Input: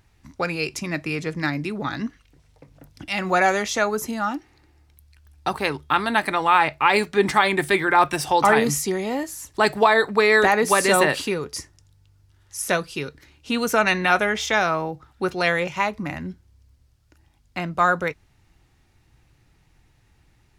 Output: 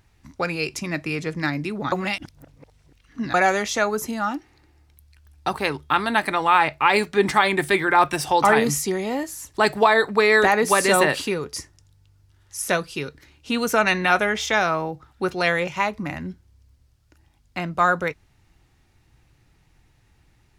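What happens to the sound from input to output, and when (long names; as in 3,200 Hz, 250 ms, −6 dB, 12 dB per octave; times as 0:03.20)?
0:01.92–0:03.34: reverse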